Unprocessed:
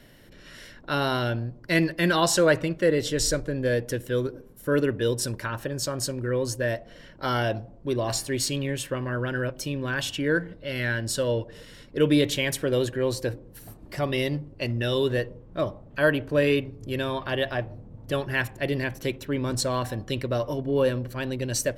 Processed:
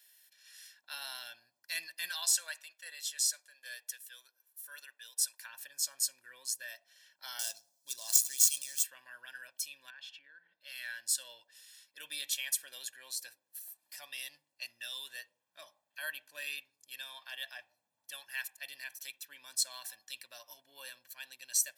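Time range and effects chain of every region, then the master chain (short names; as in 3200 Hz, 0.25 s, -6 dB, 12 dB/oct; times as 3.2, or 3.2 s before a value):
2.09–5.45 HPF 620 Hz + tremolo saw down 1.3 Hz, depth 45%
7.39–8.84 median filter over 9 samples + resonant high shelf 3500 Hz +14 dB, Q 1.5
9.9–10.61 air absorption 330 m + compressor 10:1, threshold -32 dBFS
whole clip: HPF 1400 Hz 6 dB/oct; differentiator; comb 1.2 ms, depth 65%; gain -2 dB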